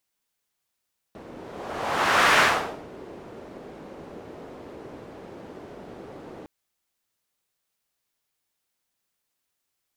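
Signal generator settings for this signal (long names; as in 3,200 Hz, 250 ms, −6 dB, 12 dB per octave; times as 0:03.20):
pass-by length 5.31 s, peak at 0:01.23, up 1.13 s, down 0.51 s, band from 400 Hz, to 1,500 Hz, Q 1.2, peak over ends 24 dB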